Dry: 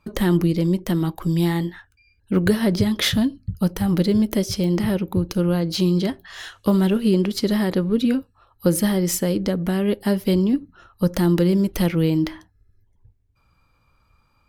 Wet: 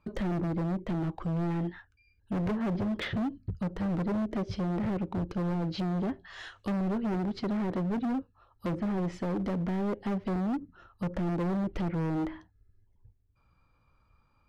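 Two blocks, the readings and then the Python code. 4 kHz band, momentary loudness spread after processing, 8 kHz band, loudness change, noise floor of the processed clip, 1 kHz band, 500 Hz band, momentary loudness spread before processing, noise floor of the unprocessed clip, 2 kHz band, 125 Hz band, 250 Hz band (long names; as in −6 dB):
−18.5 dB, 6 LU, below −25 dB, −11.0 dB, −69 dBFS, −4.5 dB, −12.5 dB, 6 LU, −63 dBFS, −11.0 dB, −10.5 dB, −11.0 dB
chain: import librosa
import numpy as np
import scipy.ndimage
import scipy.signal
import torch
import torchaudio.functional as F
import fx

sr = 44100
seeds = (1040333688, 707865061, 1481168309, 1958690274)

y = scipy.signal.sosfilt(scipy.signal.butter(2, 8000.0, 'lowpass', fs=sr, output='sos'), x)
y = fx.env_lowpass_down(y, sr, base_hz=900.0, full_db=-14.5)
y = fx.high_shelf(y, sr, hz=3300.0, db=-9.5)
y = np.clip(y, -10.0 ** (-23.0 / 20.0), 10.0 ** (-23.0 / 20.0))
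y = F.gain(torch.from_numpy(y), -5.0).numpy()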